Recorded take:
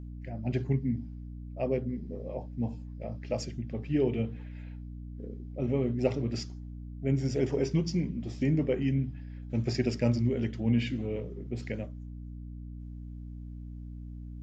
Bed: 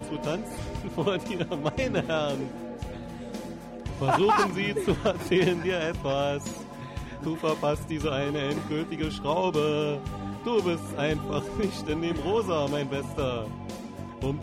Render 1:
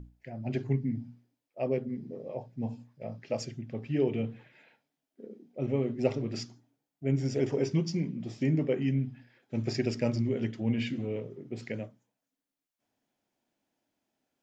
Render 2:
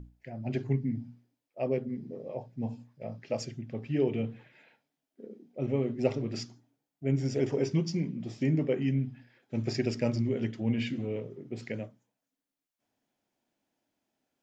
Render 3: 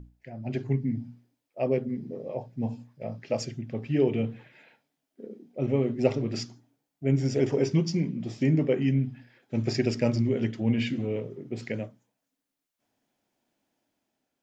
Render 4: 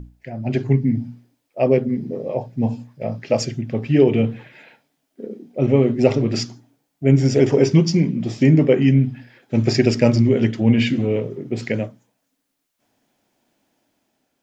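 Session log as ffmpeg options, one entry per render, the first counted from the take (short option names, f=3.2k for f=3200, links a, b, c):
-af "bandreject=f=60:t=h:w=6,bandreject=f=120:t=h:w=6,bandreject=f=180:t=h:w=6,bandreject=f=240:t=h:w=6,bandreject=f=300:t=h:w=6"
-af anull
-af "dynaudnorm=f=310:g=5:m=4dB"
-af "volume=10dB,alimiter=limit=-3dB:level=0:latency=1"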